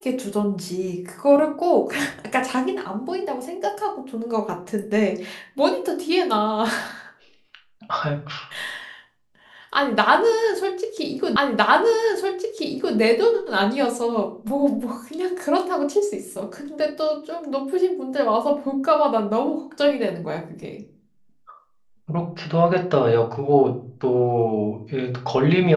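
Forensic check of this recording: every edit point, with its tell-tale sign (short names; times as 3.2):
11.36 repeat of the last 1.61 s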